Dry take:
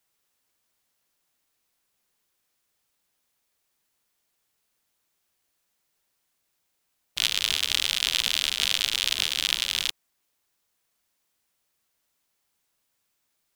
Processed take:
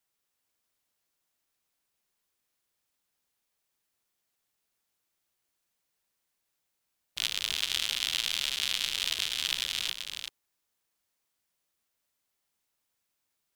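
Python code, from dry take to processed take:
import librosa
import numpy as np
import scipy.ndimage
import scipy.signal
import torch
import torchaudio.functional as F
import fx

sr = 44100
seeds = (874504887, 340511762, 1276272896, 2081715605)

y = x + 10.0 ** (-5.5 / 20.0) * np.pad(x, (int(385 * sr / 1000.0), 0))[:len(x)]
y = F.gain(torch.from_numpy(y), -6.5).numpy()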